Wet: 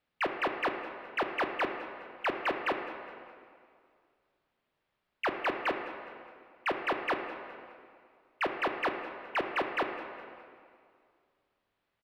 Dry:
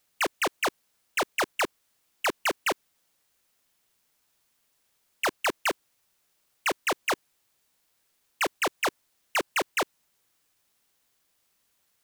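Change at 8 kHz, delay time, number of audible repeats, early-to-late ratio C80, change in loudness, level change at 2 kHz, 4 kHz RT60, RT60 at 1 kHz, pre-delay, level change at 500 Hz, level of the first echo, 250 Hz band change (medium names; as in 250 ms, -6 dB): under -25 dB, 206 ms, 2, 7.0 dB, -4.5 dB, -4.0 dB, 1.7 s, 2.2 s, 8 ms, -1.5 dB, -18.5 dB, -0.5 dB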